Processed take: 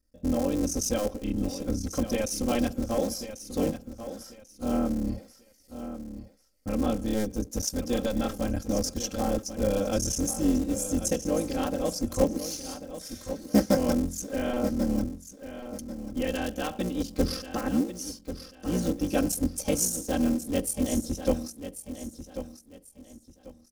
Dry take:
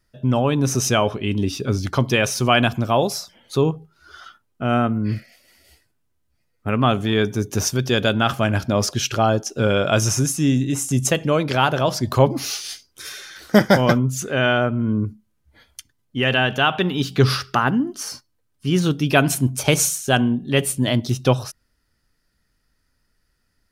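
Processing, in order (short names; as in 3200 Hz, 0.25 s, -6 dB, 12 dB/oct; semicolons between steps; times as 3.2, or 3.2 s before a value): cycle switcher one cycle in 3, muted; band shelf 1800 Hz -12 dB 2.6 oct; comb 3.8 ms, depth 98%; feedback echo 1.091 s, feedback 28%, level -11 dB; gain -8 dB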